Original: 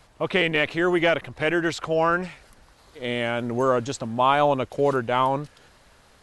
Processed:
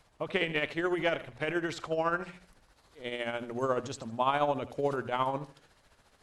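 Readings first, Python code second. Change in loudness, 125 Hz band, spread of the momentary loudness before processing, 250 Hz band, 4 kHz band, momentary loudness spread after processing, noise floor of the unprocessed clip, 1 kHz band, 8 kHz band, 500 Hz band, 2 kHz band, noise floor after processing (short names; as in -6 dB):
-9.0 dB, -10.0 dB, 9 LU, -9.5 dB, -9.0 dB, 10 LU, -56 dBFS, -8.5 dB, -9.0 dB, -9.0 dB, -9.0 dB, -67 dBFS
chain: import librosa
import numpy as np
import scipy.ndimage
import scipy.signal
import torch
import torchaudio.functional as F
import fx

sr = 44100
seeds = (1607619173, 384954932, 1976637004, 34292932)

y = fx.hum_notches(x, sr, base_hz=60, count=4)
y = y * (1.0 - 0.55 / 2.0 + 0.55 / 2.0 * np.cos(2.0 * np.pi * 14.0 * (np.arange(len(y)) / sr)))
y = fx.echo_feedback(y, sr, ms=78, feedback_pct=30, wet_db=-15)
y = F.gain(torch.from_numpy(y), -6.5).numpy()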